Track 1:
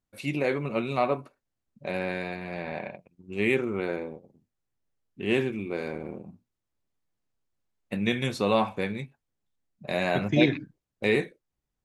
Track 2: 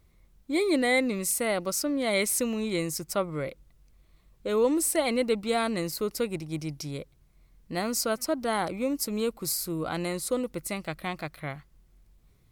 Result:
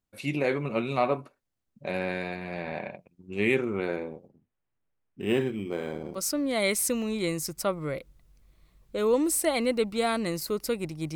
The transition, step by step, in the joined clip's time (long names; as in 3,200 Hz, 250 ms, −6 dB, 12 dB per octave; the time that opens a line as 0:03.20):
track 1
0:04.28–0:06.25: linearly interpolated sample-rate reduction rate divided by 8×
0:06.16: continue with track 2 from 0:01.67, crossfade 0.18 s